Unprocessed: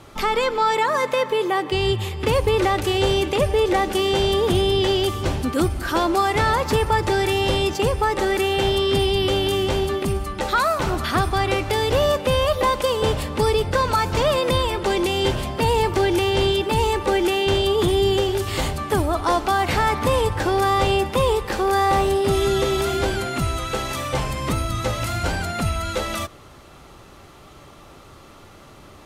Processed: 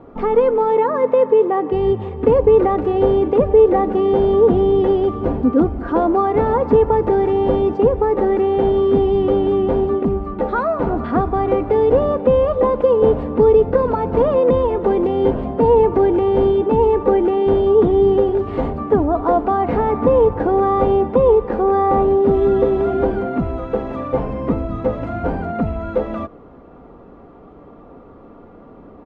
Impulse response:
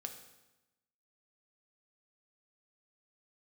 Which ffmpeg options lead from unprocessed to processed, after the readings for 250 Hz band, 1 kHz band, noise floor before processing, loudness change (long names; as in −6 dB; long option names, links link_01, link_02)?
+6.5 dB, +1.0 dB, −45 dBFS, +4.5 dB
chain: -af "lowpass=1100,equalizer=frequency=350:width=0.54:gain=9.5,aecho=1:1:4.2:0.44,volume=-1.5dB"